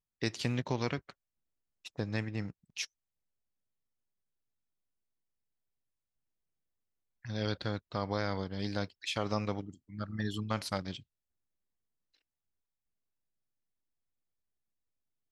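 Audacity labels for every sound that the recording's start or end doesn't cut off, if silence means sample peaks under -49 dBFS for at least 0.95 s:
7.250000	11.000000	sound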